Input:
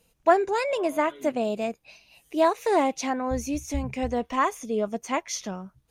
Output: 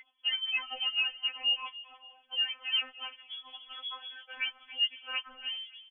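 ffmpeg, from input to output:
-filter_complex "[0:a]afreqshift=28,aeval=exprs='val(0)+0.01*sin(2*PI*1400*n/s)':c=same,asplit=2[a][b];[b]asoftclip=type=tanh:threshold=-22.5dB,volume=-4dB[c];[a][c]amix=inputs=2:normalize=0,asettb=1/sr,asplit=3[d][e][f];[d]atrim=end=0.574[g];[e]atrim=start=0.57:end=1.68,asetpts=PTS-STARTPTS,afade=t=in:d=0.004:c=qsin,afade=t=out:st=1.106:d=0.004:c=qsin,highpass=630[h];[f]atrim=start=1.676[i];[g][h]acrossfade=d=0.004:c1=hsin:c2=qsin[j];[j][i]acrossfade=d=0.004:c1=qsin:c2=hsin,asplit=2[k][l];[l]adelay=284,lowpass=f=970:p=1,volume=-16.5dB,asplit=2[m][n];[n]adelay=284,lowpass=f=970:p=1,volume=0.45,asplit=2[o][p];[p]adelay=284,lowpass=f=970:p=1,volume=0.45,asplit=2[q][r];[r]adelay=284,lowpass=f=970:p=1,volume=0.45[s];[k][m][o][q][s]amix=inputs=5:normalize=0,acompressor=threshold=-26dB:ratio=2.5,lowpass=f=3k:t=q:w=0.5098,lowpass=f=3k:t=q:w=0.6013,lowpass=f=3k:t=q:w=0.9,lowpass=f=3k:t=q:w=2.563,afreqshift=-3500,afftfilt=real='re*3.46*eq(mod(b,12),0)':imag='im*3.46*eq(mod(b,12),0)':win_size=2048:overlap=0.75,volume=-3dB"

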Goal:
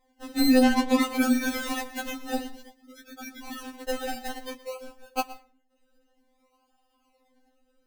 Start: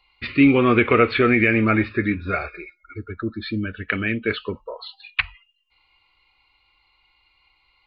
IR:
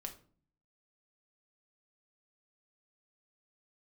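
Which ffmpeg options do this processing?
-filter_complex "[0:a]acrusher=samples=31:mix=1:aa=0.000001:lfo=1:lforange=18.6:lforate=0.55,asettb=1/sr,asplit=3[a][b][c];[a]atrim=end=0.634[d];[b]atrim=start=0.63:end=1.04,asetpts=PTS-STARTPTS,afade=t=in:d=0.004:c=qsin,afade=t=out:st=0.406:d=0.004:c=qsin,adynamicsmooth=sensitivity=1:basefreq=1.5k[e];[c]atrim=start=1.036[f];[d][e]acrossfade=d=0.004:c1=hsin:c2=qsin[g];[g][f]acrossfade=d=0.004:c1=qsin:c2=hsin,asplit=2[h][i];[1:a]atrim=start_sample=2205,adelay=118[j];[i][j]afir=irnorm=-1:irlink=0,volume=-13dB[k];[h][k]amix=inputs=2:normalize=0,afftfilt=real='re*3.46*eq(mod(b,12),0)':imag='im*3.46*eq(mod(b,12),0)':win_size=2048:overlap=0.75,volume=-3.5dB"

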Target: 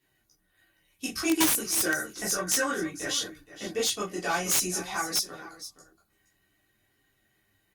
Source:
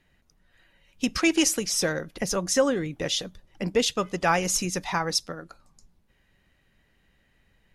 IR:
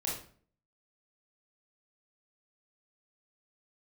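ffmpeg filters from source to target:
-filter_complex "[1:a]atrim=start_sample=2205,atrim=end_sample=3969,asetrate=79380,aresample=44100[a];[0:a][a]afir=irnorm=-1:irlink=0,asoftclip=type=tanh:threshold=-15dB,asettb=1/sr,asplit=3[b][c][d];[b]atrim=end=1.704[e];[c]atrim=start=1.7:end=3.68,asetpts=PTS-STARTPTS,afade=t=in:d=0.004:c=qsin,afade=t=out:st=1.976:d=0.004:c=qsin,equalizer=f=1.5k:t=o:w=0.63:g=8.5[f];[d]atrim=start=3.676[g];[e][f]acrossfade=d=0.004:c1=hsin:c2=qsin[h];[h][g]acrossfade=d=0.004:c1=qsin:c2=hsin,flanger=delay=7.6:depth=4.9:regen=-39:speed=0.57:shape=sinusoidal,aemphasis=mode=production:type=50fm,aecho=1:1:2.7:0.51,aecho=1:1:44|471:0.133|0.178,aeval=exprs='(mod(6.31*val(0)+1,2)-1)/6.31':c=same,highpass=67" -ar 48000 -c:a libopus -b:a 48k

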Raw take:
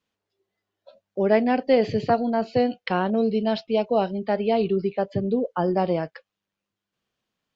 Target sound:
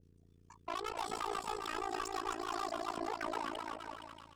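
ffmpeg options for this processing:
-filter_complex "[0:a]equalizer=f=340:w=0.71:g=-9,acrossover=split=230[a][b];[a]acompressor=threshold=-47dB:ratio=6[c];[c][b]amix=inputs=2:normalize=0,alimiter=limit=-19.5dB:level=0:latency=1:release=308,asoftclip=type=tanh:threshold=-34.5dB,aecho=1:1:450|810|1098|1328|1513:0.631|0.398|0.251|0.158|0.1,aeval=exprs='val(0)+0.000891*(sin(2*PI*50*n/s)+sin(2*PI*2*50*n/s)/2+sin(2*PI*3*50*n/s)/3+sin(2*PI*4*50*n/s)/4+sin(2*PI*5*50*n/s)/5)':c=same,tremolo=f=32:d=0.974,asetrate=76440,aresample=44100,adynamicequalizer=threshold=0.00224:dfrequency=1900:dqfactor=0.7:tfrequency=1900:tqfactor=0.7:attack=5:release=100:ratio=0.375:range=1.5:mode=cutabove:tftype=highshelf,volume=2dB"

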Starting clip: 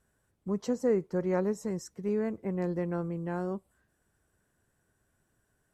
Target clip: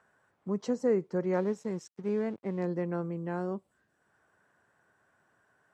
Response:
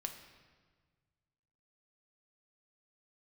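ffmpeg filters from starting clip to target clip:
-filter_complex "[0:a]acrossover=split=650|1900[a][b][c];[b]acompressor=mode=upward:threshold=-59dB:ratio=2.5[d];[a][d][c]amix=inputs=3:normalize=0,asettb=1/sr,asplit=3[e][f][g];[e]atrim=end=1.334[h];[f]atrim=start=1.33:end=2.63,asetpts=PTS-STARTPTS,afade=t=in:d=0.004:c=qsin,afade=t=out:st=1.296:d=0.004:c=qsin,aeval=exprs='sgn(val(0))*max(abs(val(0))-0.00237,0)':c=same[i];[g]atrim=start=2.626[j];[h][i]acrossfade=d=0.004:c1=hsin:c2=qsin[k];[k][j]acrossfade=d=0.004:c1=qsin:c2=hsin,highpass=130,lowpass=6.8k"

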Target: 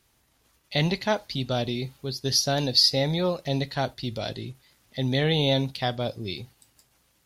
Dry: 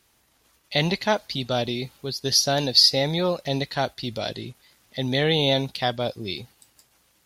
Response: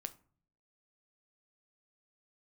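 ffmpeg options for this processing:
-filter_complex "[0:a]lowshelf=f=190:g=6.5,asplit=2[a][b];[1:a]atrim=start_sample=2205,afade=t=out:st=0.14:d=0.01,atrim=end_sample=6615[c];[b][c]afir=irnorm=-1:irlink=0,volume=0dB[d];[a][d]amix=inputs=2:normalize=0,volume=-8dB"

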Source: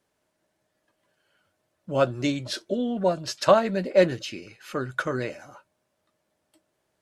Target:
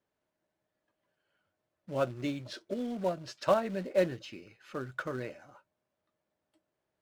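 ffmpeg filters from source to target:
-af "acrusher=bits=4:mode=log:mix=0:aa=0.000001,aemphasis=mode=reproduction:type=50kf,volume=-8.5dB"

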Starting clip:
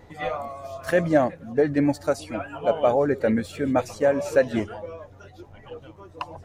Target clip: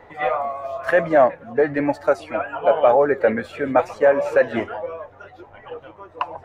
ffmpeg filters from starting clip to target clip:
-filter_complex "[0:a]apsyclip=13.5dB,acrossover=split=450 2600:gain=0.2 1 0.126[a][b][c];[a][b][c]amix=inputs=3:normalize=0,flanger=delay=4.5:depth=4.1:regen=84:speed=0.99:shape=sinusoidal"

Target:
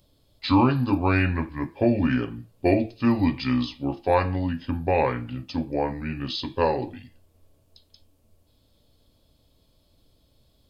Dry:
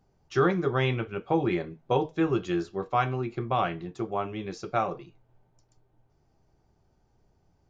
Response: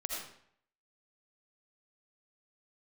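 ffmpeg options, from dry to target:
-af "asetrate=31752,aresample=44100,aexciter=amount=3.8:drive=5.8:freq=2.7k,volume=4dB"

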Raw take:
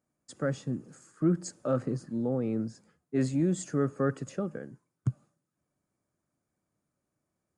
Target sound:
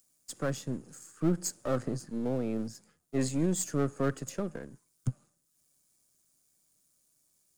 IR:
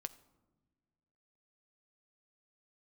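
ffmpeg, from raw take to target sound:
-filter_complex "[0:a]aeval=exprs='if(lt(val(0),0),0.447*val(0),val(0))':c=same,highshelf=f=3.7k:g=12,acrossover=split=320|690|3300[a][b][c][d];[d]acompressor=mode=upward:threshold=-58dB:ratio=2.5[e];[a][b][c][e]amix=inputs=4:normalize=0"

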